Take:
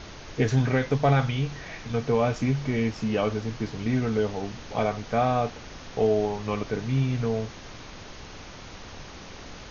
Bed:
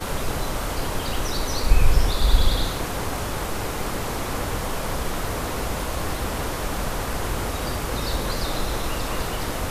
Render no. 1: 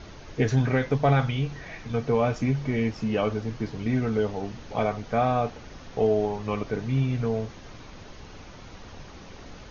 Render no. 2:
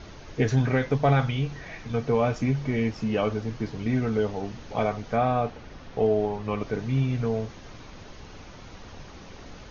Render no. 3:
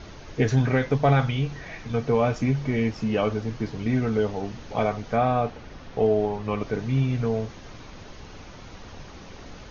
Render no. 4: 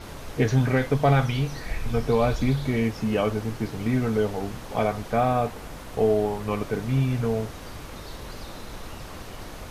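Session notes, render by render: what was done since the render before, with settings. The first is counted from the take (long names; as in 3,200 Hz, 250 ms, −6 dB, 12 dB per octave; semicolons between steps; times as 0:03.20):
broadband denoise 6 dB, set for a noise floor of −43 dBFS
0:05.16–0:06.61: high-frequency loss of the air 90 metres
level +1.5 dB
mix in bed −14.5 dB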